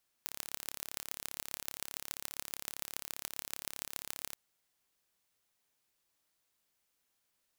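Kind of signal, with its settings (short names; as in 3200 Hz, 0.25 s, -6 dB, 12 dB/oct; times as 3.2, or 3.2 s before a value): pulse train 35.1/s, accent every 5, -9 dBFS 4.09 s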